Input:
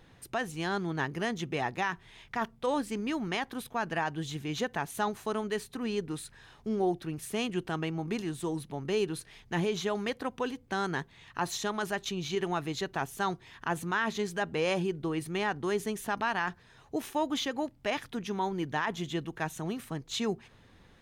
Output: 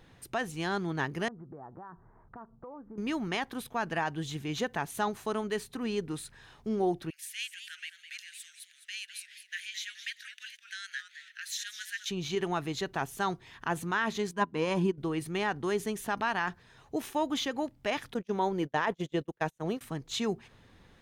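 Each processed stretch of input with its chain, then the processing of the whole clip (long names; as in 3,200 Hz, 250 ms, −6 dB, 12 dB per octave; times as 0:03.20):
0:01.28–0:02.98: Butterworth low-pass 1,400 Hz 48 dB per octave + downward compressor 5 to 1, threshold −44 dBFS
0:07.10–0:12.10: Butterworth high-pass 1,600 Hz 72 dB per octave + feedback echo with a swinging delay time 211 ms, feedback 42%, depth 155 cents, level −10.5 dB
0:14.31–0:14.98: notch filter 240 Hz, Q 5 + hollow resonant body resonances 240/1,000 Hz, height 17 dB, ringing for 50 ms + expander for the loud parts 2.5 to 1, over −34 dBFS
0:18.14–0:19.81: noise gate −37 dBFS, range −34 dB + parametric band 530 Hz +8.5 dB 0.7 octaves
whole clip: no processing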